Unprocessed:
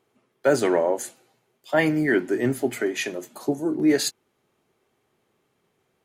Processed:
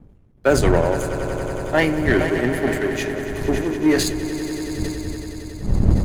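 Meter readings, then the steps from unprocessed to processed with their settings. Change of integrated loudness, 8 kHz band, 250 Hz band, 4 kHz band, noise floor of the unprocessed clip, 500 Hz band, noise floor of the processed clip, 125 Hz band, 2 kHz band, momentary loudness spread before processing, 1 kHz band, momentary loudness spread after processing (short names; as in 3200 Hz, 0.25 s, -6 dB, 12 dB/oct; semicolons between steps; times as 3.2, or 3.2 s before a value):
+2.5 dB, +2.5 dB, +4.0 dB, +3.5 dB, -72 dBFS, +3.5 dB, -50 dBFS, +13.0 dB, +4.5 dB, 9 LU, +5.0 dB, 9 LU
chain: wind noise 120 Hz -28 dBFS; power-law curve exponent 1.4; on a send: swelling echo 93 ms, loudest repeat 5, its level -14 dB; on the sum: sustainer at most 57 dB/s; gain +5 dB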